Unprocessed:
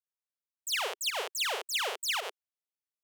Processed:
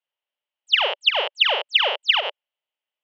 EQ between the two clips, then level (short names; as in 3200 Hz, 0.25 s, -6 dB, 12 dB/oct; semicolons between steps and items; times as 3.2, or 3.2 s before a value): air absorption 290 m; speaker cabinet 430–6200 Hz, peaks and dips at 580 Hz +9 dB, 870 Hz +6 dB, 2000 Hz +4 dB, 3100 Hz +6 dB; bell 2900 Hz +10 dB 0.45 oct; +7.5 dB